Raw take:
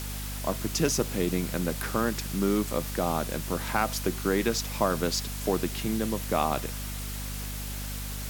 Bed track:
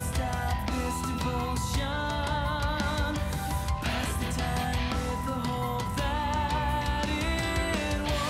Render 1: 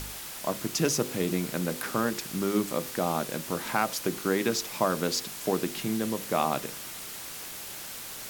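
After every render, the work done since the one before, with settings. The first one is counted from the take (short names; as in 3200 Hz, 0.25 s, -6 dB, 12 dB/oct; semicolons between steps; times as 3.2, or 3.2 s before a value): de-hum 50 Hz, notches 11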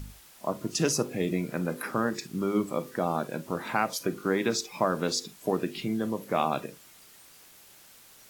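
noise print and reduce 14 dB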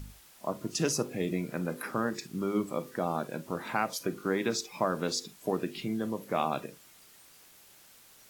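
gain -3 dB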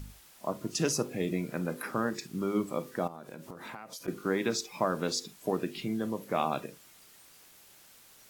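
3.07–4.08 compressor 12:1, threshold -39 dBFS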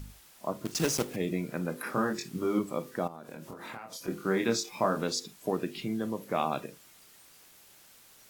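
0.65–1.18 block floating point 3-bit; 1.84–2.59 doubler 23 ms -3 dB; 3.22–5.04 doubler 26 ms -4 dB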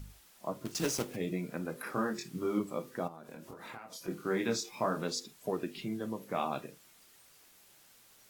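flange 0.55 Hz, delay 1.3 ms, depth 9.2 ms, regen -54%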